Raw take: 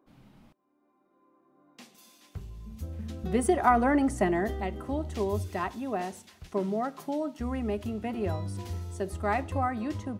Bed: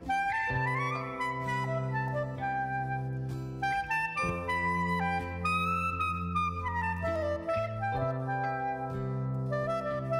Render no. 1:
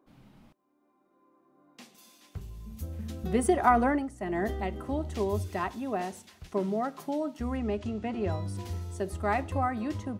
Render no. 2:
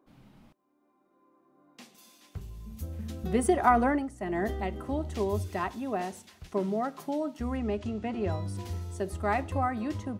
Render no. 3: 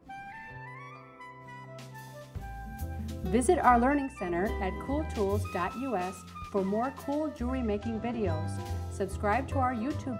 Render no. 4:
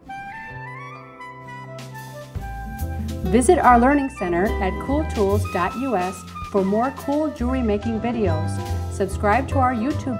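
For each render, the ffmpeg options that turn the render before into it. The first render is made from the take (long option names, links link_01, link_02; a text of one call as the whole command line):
ffmpeg -i in.wav -filter_complex "[0:a]asettb=1/sr,asplit=3[link_01][link_02][link_03];[link_01]atrim=end=2.414[link_04];[link_02]atrim=start=2.41:end=3.32,asetpts=PTS-STARTPTS,afade=type=in:duration=0.004:curve=qsin,afade=type=out:start_time=0.906:duration=0.004:curve=qsin,highshelf=frequency=9300:gain=10[link_05];[link_03]atrim=start=3.316[link_06];[link_04][link_05]acrossfade=duration=0.004:curve1=hsin:curve2=qsin[link_07];[link_07][link_06]acrossfade=duration=0.004:curve1=qsin:curve2=hsin,asettb=1/sr,asplit=3[link_08][link_09][link_10];[link_08]atrim=end=7.574[link_11];[link_09]atrim=start=7.57:end=8.32,asetpts=PTS-STARTPTS,afade=type=in:duration=0.004:curve=qsin,afade=type=out:start_time=0.746:duration=0.004:curve=qsin,lowpass=frequency=7700:width=0.5412,lowpass=frequency=7700:width=1.3066[link_12];[link_10]atrim=start=8.316[link_13];[link_11][link_12]acrossfade=duration=0.004:curve1=hsin:curve2=qsin[link_14];[link_14][link_13]acrossfade=duration=0.004:curve1=qsin:curve2=hsin,asplit=3[link_15][link_16][link_17];[link_15]atrim=end=4.09,asetpts=PTS-STARTPTS,afade=type=out:start_time=3.84:duration=0.25:silence=0.211349[link_18];[link_16]atrim=start=4.09:end=4.2,asetpts=PTS-STARTPTS,volume=-13.5dB[link_19];[link_17]atrim=start=4.2,asetpts=PTS-STARTPTS,afade=type=in:duration=0.25:silence=0.211349[link_20];[link_18][link_19][link_20]concat=n=3:v=0:a=1" out.wav
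ffmpeg -i in.wav -af anull out.wav
ffmpeg -i in.wav -i bed.wav -filter_complex "[1:a]volume=-14dB[link_01];[0:a][link_01]amix=inputs=2:normalize=0" out.wav
ffmpeg -i in.wav -af "volume=10dB,alimiter=limit=-1dB:level=0:latency=1" out.wav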